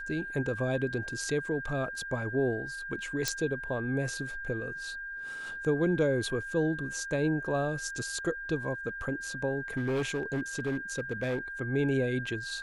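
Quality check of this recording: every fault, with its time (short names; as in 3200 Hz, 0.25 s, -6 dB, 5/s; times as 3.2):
tone 1600 Hz -37 dBFS
3.28 pop -13 dBFS
9.77–11.39 clipped -26.5 dBFS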